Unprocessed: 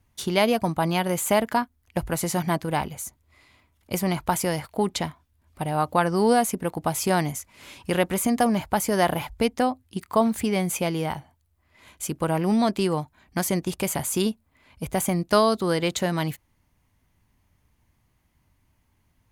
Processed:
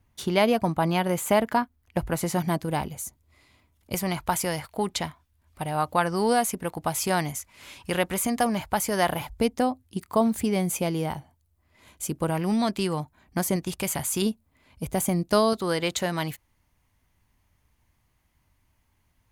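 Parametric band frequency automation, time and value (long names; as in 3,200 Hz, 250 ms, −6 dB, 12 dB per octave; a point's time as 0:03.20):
parametric band −4.5 dB 2.6 octaves
8,600 Hz
from 0:02.39 1,600 Hz
from 0:03.94 270 Hz
from 0:09.20 1,900 Hz
from 0:12.30 460 Hz
from 0:13.00 3,100 Hz
from 0:13.56 390 Hz
from 0:14.22 1,700 Hz
from 0:15.53 200 Hz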